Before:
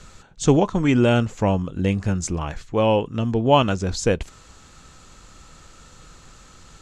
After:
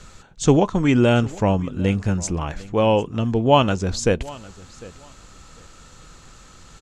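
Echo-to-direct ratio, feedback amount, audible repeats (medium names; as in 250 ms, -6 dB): -21.0 dB, 20%, 2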